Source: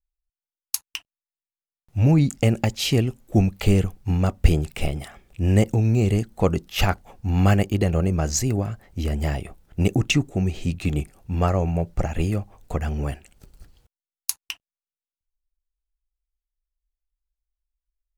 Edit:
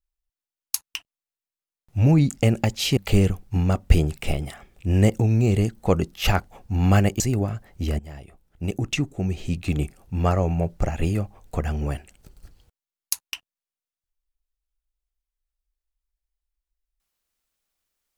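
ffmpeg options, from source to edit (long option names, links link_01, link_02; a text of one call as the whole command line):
ffmpeg -i in.wav -filter_complex "[0:a]asplit=4[link_01][link_02][link_03][link_04];[link_01]atrim=end=2.972[link_05];[link_02]atrim=start=3.508:end=7.742[link_06];[link_03]atrim=start=8.368:end=9.16,asetpts=PTS-STARTPTS,afade=type=out:start_time=0.788:duration=0.004:curve=hsin:silence=0.11885[link_07];[link_04]atrim=start=9.16,asetpts=PTS-STARTPTS,afade=type=in:duration=1.8:silence=0.11885[link_08];[link_05][link_06]acrossfade=duration=0.004:curve1=hsin:curve2=hsin[link_09];[link_07][link_08]concat=n=2:v=0:a=1[link_10];[link_09][link_10]acrossfade=duration=0.004:curve1=hsin:curve2=hsin" out.wav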